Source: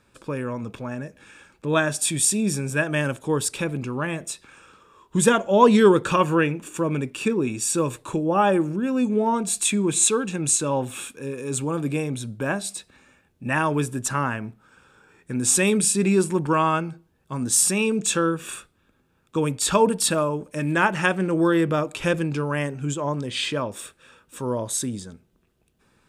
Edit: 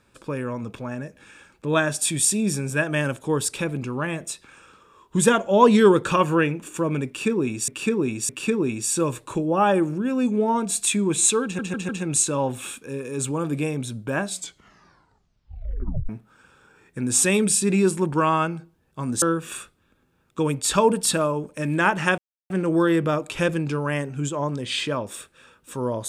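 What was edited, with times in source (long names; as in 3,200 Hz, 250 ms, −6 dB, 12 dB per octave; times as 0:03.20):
0:07.07–0:07.68: repeat, 3 plays
0:10.22: stutter 0.15 s, 4 plays
0:12.60: tape stop 1.82 s
0:17.55–0:18.19: remove
0:21.15: splice in silence 0.32 s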